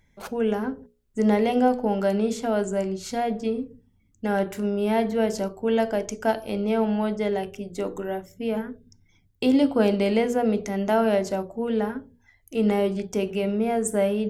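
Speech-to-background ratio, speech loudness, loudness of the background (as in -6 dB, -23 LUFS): 18.5 dB, -25.0 LUFS, -43.5 LUFS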